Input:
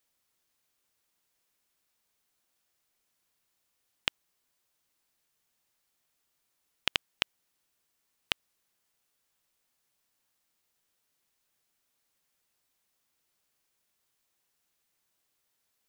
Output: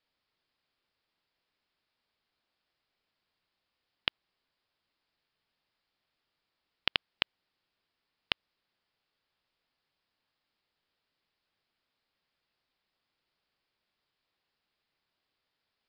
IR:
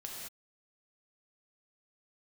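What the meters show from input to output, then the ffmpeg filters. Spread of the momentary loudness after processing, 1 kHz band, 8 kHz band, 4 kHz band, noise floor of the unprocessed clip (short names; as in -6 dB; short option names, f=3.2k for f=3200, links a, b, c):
3 LU, 0.0 dB, under -20 dB, 0.0 dB, -79 dBFS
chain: -af "aresample=11025,aresample=44100"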